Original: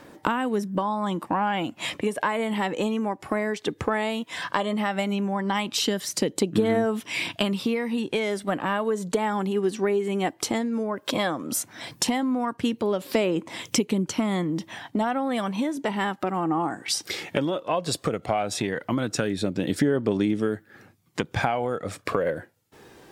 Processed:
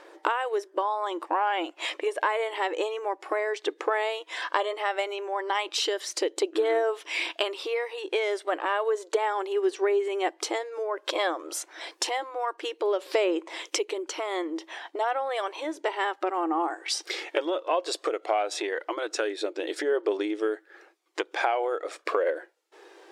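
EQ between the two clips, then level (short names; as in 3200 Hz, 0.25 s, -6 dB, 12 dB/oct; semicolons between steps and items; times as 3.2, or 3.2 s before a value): brick-wall FIR high-pass 310 Hz; air absorption 53 m; 0.0 dB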